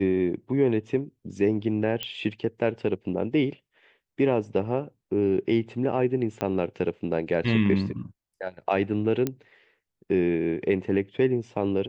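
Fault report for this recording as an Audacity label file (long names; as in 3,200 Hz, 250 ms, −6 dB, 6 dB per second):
2.030000	2.030000	click −15 dBFS
6.410000	6.410000	click −14 dBFS
9.270000	9.270000	click −13 dBFS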